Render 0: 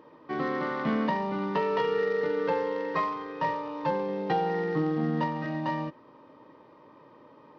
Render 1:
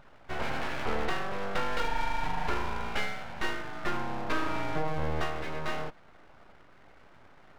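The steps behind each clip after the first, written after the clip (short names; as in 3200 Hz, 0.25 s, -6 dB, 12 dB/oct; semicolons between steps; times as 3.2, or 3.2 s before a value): full-wave rectifier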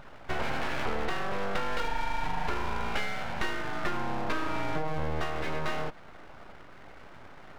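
compressor 4:1, threshold -33 dBFS, peak gain reduction 9 dB; gain +7 dB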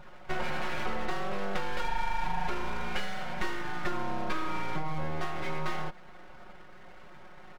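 comb 5.5 ms, depth 95%; gain -4.5 dB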